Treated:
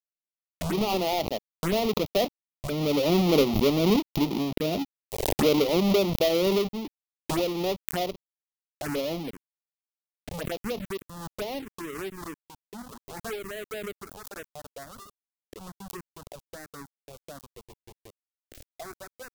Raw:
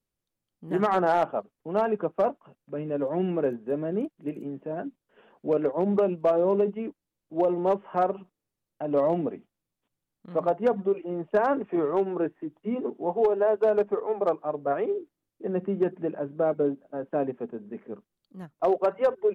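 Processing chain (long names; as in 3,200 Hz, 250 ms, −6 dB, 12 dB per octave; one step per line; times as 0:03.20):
each half-wave held at its own peak
source passing by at 0:04.14, 6 m/s, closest 7.1 metres
upward compression, threshold −40 dBFS
centre clipping without the shift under −45.5 dBFS
phaser swept by the level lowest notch 150 Hz, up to 1,600 Hz, full sweep at −32 dBFS
background raised ahead of every attack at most 42 dB per second
level +4 dB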